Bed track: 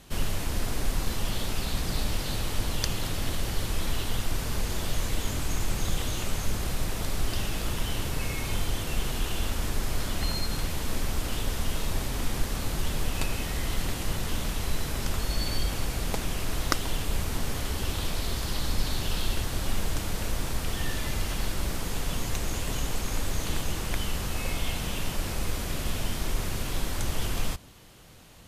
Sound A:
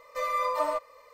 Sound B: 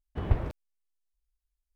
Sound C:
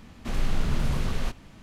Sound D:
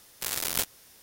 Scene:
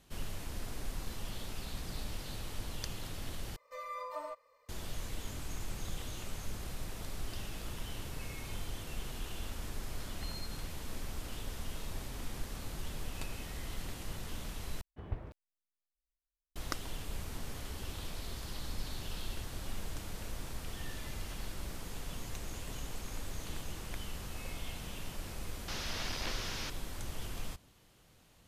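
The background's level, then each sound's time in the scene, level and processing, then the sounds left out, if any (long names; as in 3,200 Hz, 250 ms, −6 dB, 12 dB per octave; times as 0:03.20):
bed track −12 dB
0:03.56: overwrite with A −14 dB
0:14.81: overwrite with B −13.5 dB
0:25.68: mix in D −1 dB + linear delta modulator 32 kbit/s, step −33.5 dBFS
not used: C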